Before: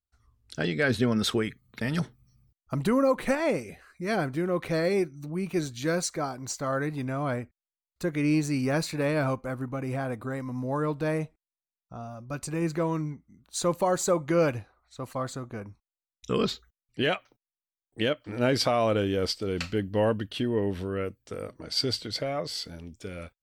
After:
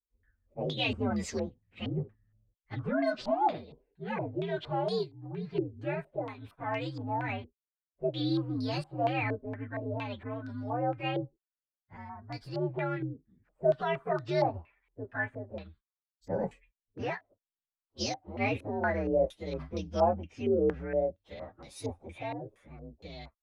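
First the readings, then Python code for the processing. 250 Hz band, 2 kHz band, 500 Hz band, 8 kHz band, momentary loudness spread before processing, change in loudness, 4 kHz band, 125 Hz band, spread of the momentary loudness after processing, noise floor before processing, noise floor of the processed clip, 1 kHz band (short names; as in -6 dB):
-6.5 dB, -5.0 dB, -4.0 dB, under -10 dB, 15 LU, -4.5 dB, -8.5 dB, -5.5 dB, 16 LU, under -85 dBFS, under -85 dBFS, -0.5 dB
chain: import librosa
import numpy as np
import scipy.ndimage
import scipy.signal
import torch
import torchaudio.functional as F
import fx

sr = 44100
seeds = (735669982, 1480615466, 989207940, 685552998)

y = fx.partial_stretch(x, sr, pct=126)
y = fx.filter_held_lowpass(y, sr, hz=4.3, low_hz=420.0, high_hz=4900.0)
y = y * 10.0 ** (-5.0 / 20.0)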